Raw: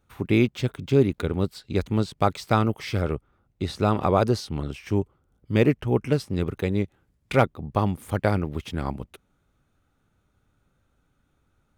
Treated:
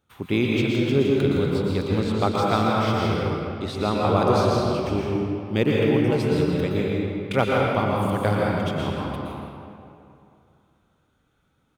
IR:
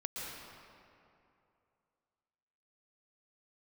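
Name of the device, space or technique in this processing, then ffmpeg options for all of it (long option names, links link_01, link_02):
PA in a hall: -filter_complex "[0:a]highpass=frequency=110:poles=1,equalizer=frequency=3300:width_type=o:width=0.31:gain=6,aecho=1:1:163:0.299[link_01];[1:a]atrim=start_sample=2205[link_02];[link_01][link_02]afir=irnorm=-1:irlink=0,volume=1.5dB"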